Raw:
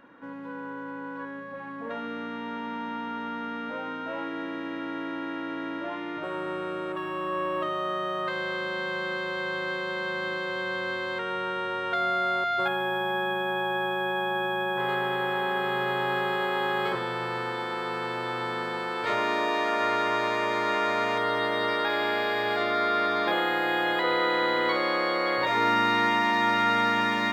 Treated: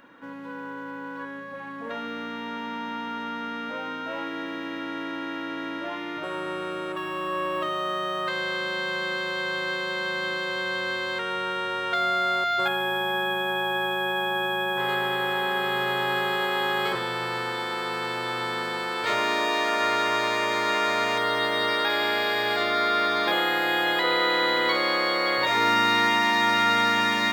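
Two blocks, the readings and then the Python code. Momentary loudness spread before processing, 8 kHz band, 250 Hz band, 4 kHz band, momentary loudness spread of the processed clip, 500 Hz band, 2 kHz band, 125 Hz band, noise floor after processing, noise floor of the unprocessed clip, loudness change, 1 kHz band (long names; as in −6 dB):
11 LU, can't be measured, 0.0 dB, +6.5 dB, 12 LU, +0.5 dB, +3.0 dB, 0.0 dB, −36 dBFS, −37 dBFS, +2.5 dB, +1.5 dB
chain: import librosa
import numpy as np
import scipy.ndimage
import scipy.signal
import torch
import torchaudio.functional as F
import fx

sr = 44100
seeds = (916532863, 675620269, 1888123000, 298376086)

y = fx.high_shelf(x, sr, hz=2900.0, db=11.0)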